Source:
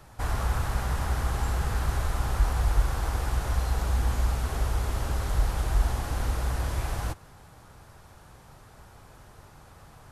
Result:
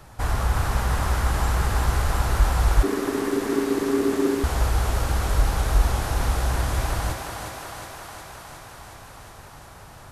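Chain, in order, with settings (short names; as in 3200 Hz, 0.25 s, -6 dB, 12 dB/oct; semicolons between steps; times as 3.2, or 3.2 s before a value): thinning echo 0.362 s, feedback 75%, high-pass 220 Hz, level -4 dB; 2.83–4.44 ring modulator 340 Hz; gain +4.5 dB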